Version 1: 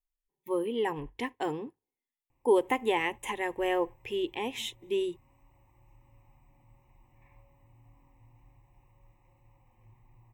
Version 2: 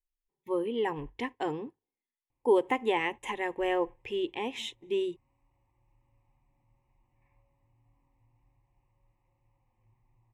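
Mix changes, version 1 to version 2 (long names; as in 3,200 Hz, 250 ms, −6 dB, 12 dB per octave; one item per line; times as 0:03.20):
background −9.5 dB
master: add high-frequency loss of the air 53 metres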